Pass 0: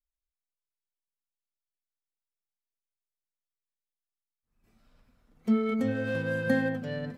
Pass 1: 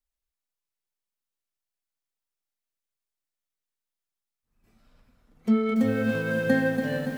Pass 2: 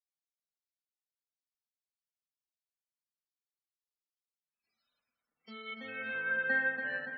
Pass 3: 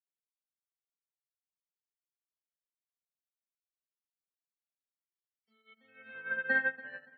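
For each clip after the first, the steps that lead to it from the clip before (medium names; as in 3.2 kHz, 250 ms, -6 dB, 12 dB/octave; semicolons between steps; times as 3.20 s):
bit-crushed delay 285 ms, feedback 55%, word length 8-bit, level -7 dB; trim +3 dB
loudest bins only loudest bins 64; band-pass sweep 4.6 kHz -> 1.7 kHz, 5.36–6.31 s; trim +1.5 dB
upward expansion 2.5:1, over -49 dBFS; trim +3 dB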